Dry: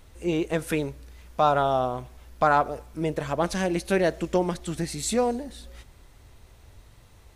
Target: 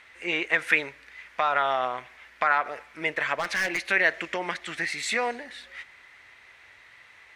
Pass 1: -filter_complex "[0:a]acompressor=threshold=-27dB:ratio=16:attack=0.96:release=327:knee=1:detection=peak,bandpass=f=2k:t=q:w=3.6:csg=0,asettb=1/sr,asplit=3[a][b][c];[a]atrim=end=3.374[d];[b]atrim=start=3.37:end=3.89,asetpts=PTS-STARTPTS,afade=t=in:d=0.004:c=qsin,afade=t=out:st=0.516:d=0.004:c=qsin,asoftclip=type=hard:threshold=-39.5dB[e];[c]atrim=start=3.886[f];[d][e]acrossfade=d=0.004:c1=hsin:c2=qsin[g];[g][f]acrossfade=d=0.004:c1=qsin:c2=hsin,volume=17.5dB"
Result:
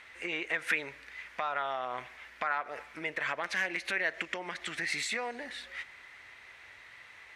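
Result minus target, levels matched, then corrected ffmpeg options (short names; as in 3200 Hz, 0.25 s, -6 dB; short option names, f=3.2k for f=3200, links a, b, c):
compressor: peak gain reduction +9.5 dB
-filter_complex "[0:a]acompressor=threshold=-17dB:ratio=16:attack=0.96:release=327:knee=1:detection=peak,bandpass=f=2k:t=q:w=3.6:csg=0,asettb=1/sr,asplit=3[a][b][c];[a]atrim=end=3.374[d];[b]atrim=start=3.37:end=3.89,asetpts=PTS-STARTPTS,afade=t=in:d=0.004:c=qsin,afade=t=out:st=0.516:d=0.004:c=qsin,asoftclip=type=hard:threshold=-39.5dB[e];[c]atrim=start=3.886[f];[d][e]acrossfade=d=0.004:c1=hsin:c2=qsin[g];[g][f]acrossfade=d=0.004:c1=qsin:c2=hsin,volume=17.5dB"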